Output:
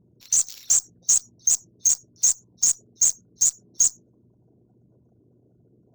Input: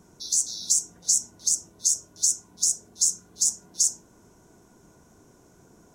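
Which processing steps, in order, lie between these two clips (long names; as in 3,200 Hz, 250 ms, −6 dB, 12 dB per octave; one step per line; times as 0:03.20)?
spectral envelope exaggerated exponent 3
high-pass filter 86 Hz
hum with harmonics 120 Hz, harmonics 5, −60 dBFS −9 dB per octave
harmonic generator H 2 −33 dB, 6 −42 dB, 7 −14 dB, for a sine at −17 dBFS
one half of a high-frequency compander decoder only
level +4 dB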